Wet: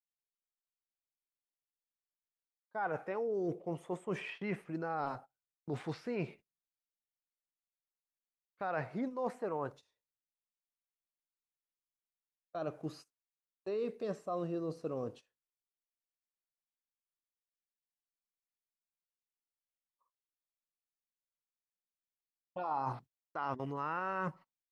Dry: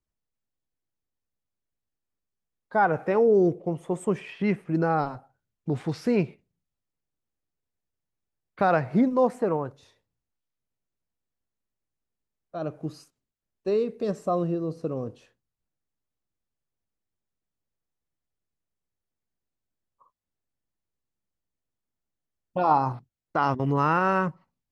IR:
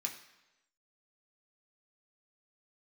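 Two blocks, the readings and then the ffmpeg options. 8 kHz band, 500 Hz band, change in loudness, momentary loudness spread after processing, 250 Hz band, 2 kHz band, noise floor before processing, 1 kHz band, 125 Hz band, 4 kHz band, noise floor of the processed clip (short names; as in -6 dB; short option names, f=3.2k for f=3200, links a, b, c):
n/a, -13.0 dB, -13.5 dB, 9 LU, -14.5 dB, -11.5 dB, under -85 dBFS, -13.0 dB, -14.0 dB, -9.0 dB, under -85 dBFS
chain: -filter_complex "[0:a]agate=range=-20dB:threshold=-44dB:ratio=16:detection=peak,acrossover=split=3700[a][b];[b]acompressor=threshold=-57dB:ratio=4:attack=1:release=60[c];[a][c]amix=inputs=2:normalize=0,lowshelf=f=330:g=-10.5,areverse,acompressor=threshold=-34dB:ratio=6,areverse"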